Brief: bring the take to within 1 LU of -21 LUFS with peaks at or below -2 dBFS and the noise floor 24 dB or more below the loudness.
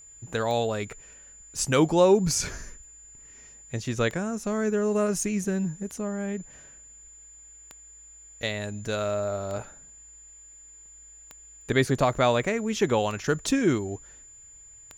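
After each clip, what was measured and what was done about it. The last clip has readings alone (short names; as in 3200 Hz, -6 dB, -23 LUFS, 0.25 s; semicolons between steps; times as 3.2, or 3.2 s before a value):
clicks 9; steady tone 7100 Hz; tone level -47 dBFS; loudness -26.5 LUFS; peak -8.0 dBFS; loudness target -21.0 LUFS
-> de-click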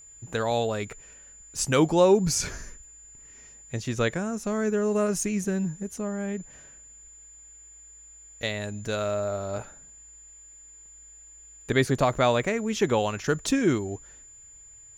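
clicks 0; steady tone 7100 Hz; tone level -47 dBFS
-> notch 7100 Hz, Q 30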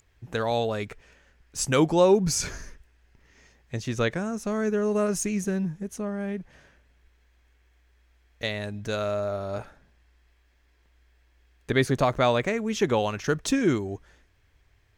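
steady tone none; loudness -26.5 LUFS; peak -8.5 dBFS; loudness target -21.0 LUFS
-> gain +5.5 dB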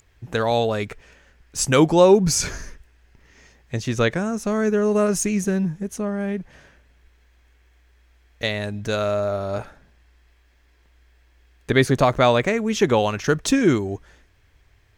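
loudness -21.0 LUFS; peak -3.0 dBFS; noise floor -58 dBFS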